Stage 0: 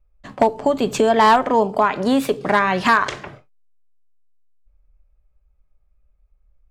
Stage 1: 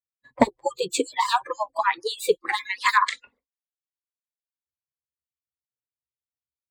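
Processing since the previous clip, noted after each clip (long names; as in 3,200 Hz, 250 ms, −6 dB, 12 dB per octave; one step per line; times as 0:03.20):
harmonic-percussive split with one part muted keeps percussive
EQ curve with evenly spaced ripples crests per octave 1, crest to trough 11 dB
noise reduction from a noise print of the clip's start 28 dB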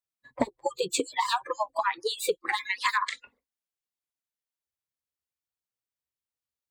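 downward compressor 6 to 1, threshold −23 dBFS, peak gain reduction 12 dB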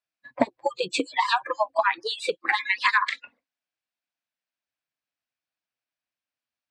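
loudspeaker in its box 130–7,100 Hz, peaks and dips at 290 Hz +4 dB, 410 Hz −8 dB, 670 Hz +6 dB, 1,600 Hz +6 dB, 2,500 Hz +6 dB, 6,800 Hz −8 dB
level +2.5 dB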